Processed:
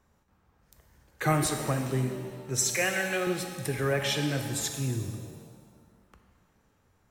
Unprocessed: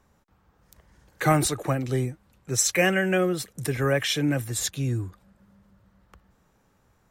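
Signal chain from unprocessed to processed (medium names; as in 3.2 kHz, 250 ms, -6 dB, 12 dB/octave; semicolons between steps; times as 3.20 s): 2.62–3.27 s: high-pass 580 Hz 6 dB/octave; pitch-shifted reverb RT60 1.6 s, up +7 st, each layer -8 dB, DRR 5 dB; trim -4.5 dB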